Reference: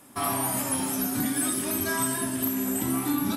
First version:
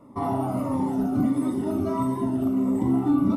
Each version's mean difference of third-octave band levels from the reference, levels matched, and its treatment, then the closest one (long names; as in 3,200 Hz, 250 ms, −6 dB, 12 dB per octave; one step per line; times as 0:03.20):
11.5 dB: Savitzky-Golay smoothing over 65 samples
phaser whose notches keep moving one way falling 1.5 Hz
level +6.5 dB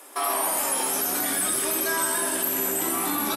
5.5 dB: Butterworth high-pass 350 Hz 36 dB per octave
in parallel at −1 dB: compressor whose output falls as the input rises −34 dBFS, ratio −1
on the sum: echo with shifted repeats 125 ms, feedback 37%, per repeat −75 Hz, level −7.5 dB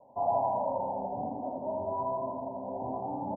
20.0 dB: Chebyshev low-pass filter 980 Hz, order 8
low shelf with overshoot 430 Hz −9 dB, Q 3
on a send: repeating echo 82 ms, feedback 59%, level −4 dB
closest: second